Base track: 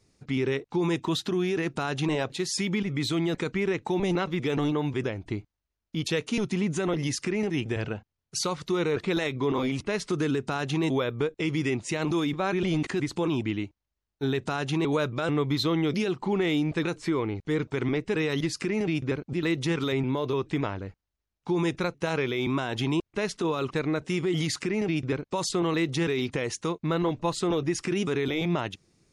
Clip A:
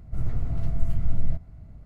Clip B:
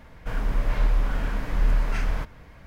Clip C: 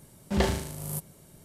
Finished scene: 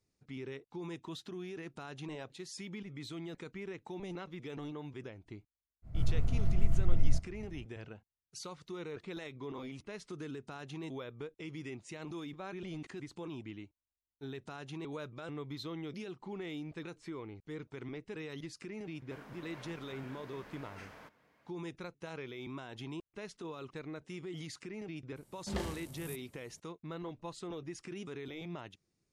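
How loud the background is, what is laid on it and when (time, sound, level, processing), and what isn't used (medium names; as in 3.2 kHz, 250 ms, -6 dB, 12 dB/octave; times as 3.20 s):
base track -16.5 dB
5.82 s: add A -3.5 dB, fades 0.05 s
18.84 s: add B -16.5 dB + high-pass 230 Hz
25.16 s: add C -12.5 dB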